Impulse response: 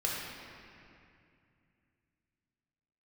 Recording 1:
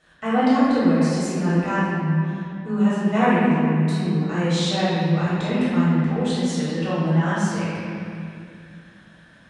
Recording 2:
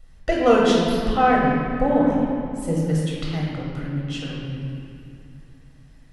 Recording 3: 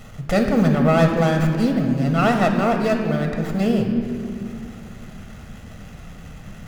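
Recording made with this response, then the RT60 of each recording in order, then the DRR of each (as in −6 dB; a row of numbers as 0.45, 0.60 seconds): 2; 2.4, 2.4, 2.5 seconds; −12.0, −4.5, 3.5 decibels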